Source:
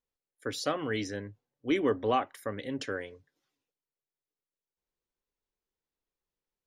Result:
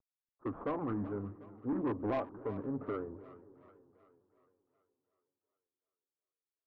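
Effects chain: CVSD coder 32 kbps; elliptic low-pass 1.4 kHz, stop band 70 dB; in parallel at +2 dB: compression, threshold -38 dBFS, peak gain reduction 14.5 dB; on the sum: formant shift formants -3 st; saturation -25 dBFS, distortion -12 dB; on a send: two-band feedback delay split 440 Hz, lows 284 ms, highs 372 ms, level -16 dB; on the sum: vibrato with a chosen wave saw down 3.8 Hz, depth 100 cents; trim -3.5 dB

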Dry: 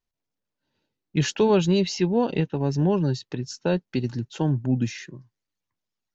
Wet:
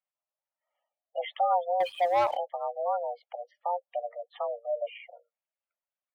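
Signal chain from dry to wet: mistuned SSB +350 Hz 200–2900 Hz; spectral gate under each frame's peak -15 dB strong; 1.80–2.37 s: waveshaping leveller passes 2; trim -5.5 dB

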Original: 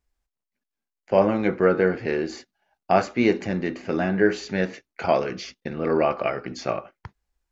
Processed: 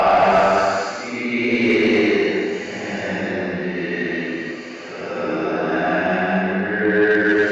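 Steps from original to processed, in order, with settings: Paulstretch 5.4×, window 0.25 s, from 2.91 s; overdrive pedal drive 15 dB, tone 3.9 kHz, clips at -6 dBFS

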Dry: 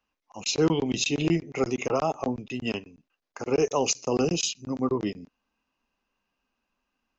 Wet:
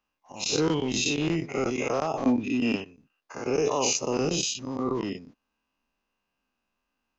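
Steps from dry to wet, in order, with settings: every event in the spectrogram widened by 120 ms; 2.25–2.76 s: small resonant body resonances 270/2400 Hz, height 14 dB; trim -6 dB

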